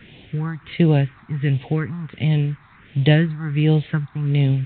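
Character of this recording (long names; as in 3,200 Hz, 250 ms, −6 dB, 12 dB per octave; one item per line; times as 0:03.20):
tremolo triangle 1.4 Hz, depth 75%
a quantiser's noise floor 8 bits, dither triangular
phaser sweep stages 4, 1.4 Hz, lowest notch 490–1,300 Hz
mu-law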